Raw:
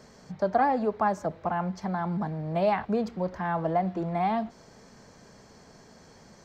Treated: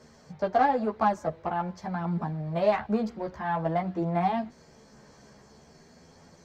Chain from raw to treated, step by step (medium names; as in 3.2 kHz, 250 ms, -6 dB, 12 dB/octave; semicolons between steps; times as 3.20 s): Chebyshev shaper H 7 -29 dB, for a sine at -12.5 dBFS; chorus voices 2, 0.48 Hz, delay 13 ms, depth 1.3 ms; trim +3 dB